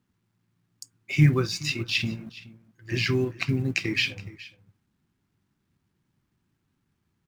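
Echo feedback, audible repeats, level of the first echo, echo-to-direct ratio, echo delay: no regular repeats, 1, -19.0 dB, -19.0 dB, 420 ms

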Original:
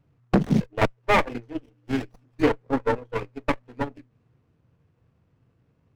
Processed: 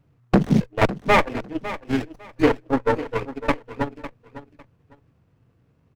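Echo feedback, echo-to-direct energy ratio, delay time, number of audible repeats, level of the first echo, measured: 21%, -14.0 dB, 553 ms, 2, -14.0 dB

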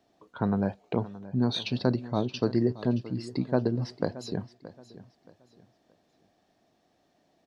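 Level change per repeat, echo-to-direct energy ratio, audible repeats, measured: -10.5 dB, -16.0 dB, 2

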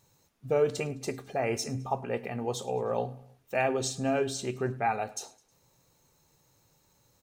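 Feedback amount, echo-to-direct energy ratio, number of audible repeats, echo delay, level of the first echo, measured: 50%, -21.0 dB, 3, 105 ms, -22.0 dB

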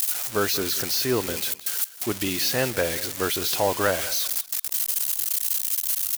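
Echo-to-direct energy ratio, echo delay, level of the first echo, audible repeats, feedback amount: -17.0 dB, 185 ms, -17.0 dB, 2, 21%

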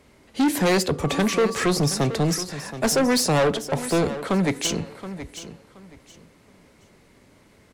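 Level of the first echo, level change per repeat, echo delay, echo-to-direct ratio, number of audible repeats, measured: -13.0 dB, -13.0 dB, 724 ms, -13.0 dB, 2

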